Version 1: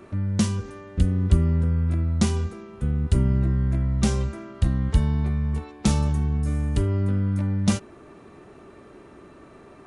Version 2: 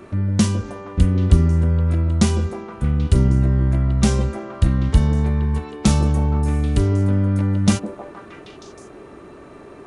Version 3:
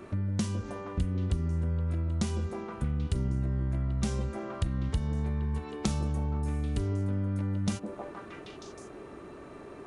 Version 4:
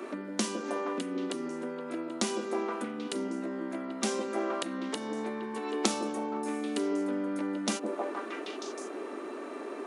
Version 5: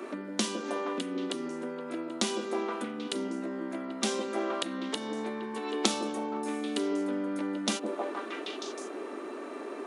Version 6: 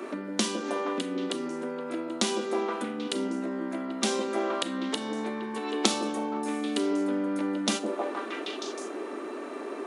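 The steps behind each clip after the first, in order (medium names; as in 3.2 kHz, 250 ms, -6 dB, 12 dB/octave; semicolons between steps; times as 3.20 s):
repeats whose band climbs or falls 157 ms, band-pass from 410 Hz, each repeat 0.7 oct, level -2 dB; trim +5 dB
compression 3:1, threshold -24 dBFS, peak gain reduction 13.5 dB; trim -5 dB
steep high-pass 240 Hz 48 dB/octave; trim +7 dB
dynamic bell 3.5 kHz, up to +6 dB, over -55 dBFS, Q 2
reverberation RT60 0.35 s, pre-delay 29 ms, DRR 14 dB; trim +2.5 dB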